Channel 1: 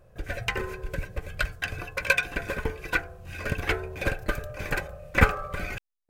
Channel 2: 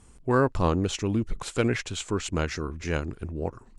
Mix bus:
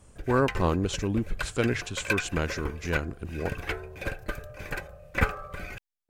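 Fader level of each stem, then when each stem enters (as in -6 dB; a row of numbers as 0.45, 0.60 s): -5.5, -1.5 dB; 0.00, 0.00 s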